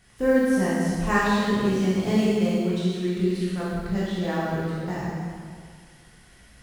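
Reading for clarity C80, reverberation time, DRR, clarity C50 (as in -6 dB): -1.0 dB, 2.0 s, -8.5 dB, -3.5 dB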